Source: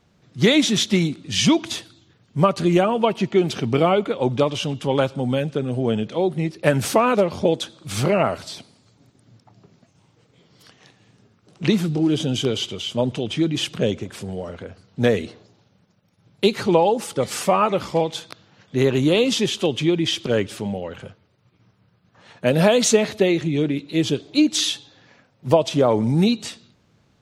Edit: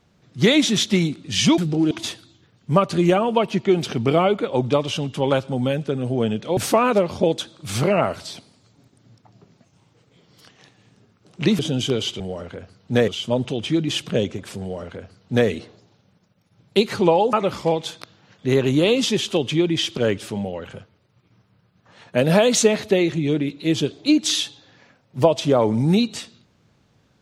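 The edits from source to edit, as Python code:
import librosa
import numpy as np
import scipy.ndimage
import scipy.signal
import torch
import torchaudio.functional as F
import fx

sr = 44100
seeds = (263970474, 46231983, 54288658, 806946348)

y = fx.edit(x, sr, fx.cut(start_s=6.24, length_s=0.55),
    fx.move(start_s=11.81, length_s=0.33, to_s=1.58),
    fx.duplicate(start_s=14.28, length_s=0.88, to_s=12.75),
    fx.cut(start_s=17.0, length_s=0.62), tone=tone)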